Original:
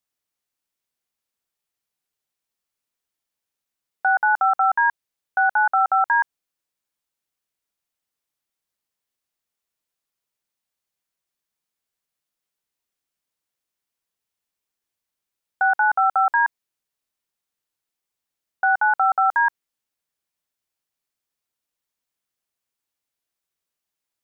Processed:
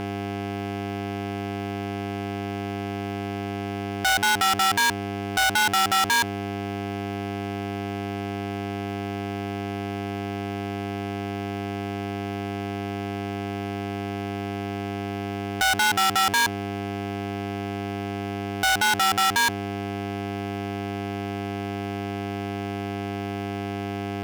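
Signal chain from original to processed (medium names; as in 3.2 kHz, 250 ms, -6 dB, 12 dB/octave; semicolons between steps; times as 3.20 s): mains buzz 100 Hz, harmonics 4, -41 dBFS -3 dB/octave; fuzz box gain 46 dB, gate -48 dBFS; bass shelf 390 Hz -10.5 dB; trim -5 dB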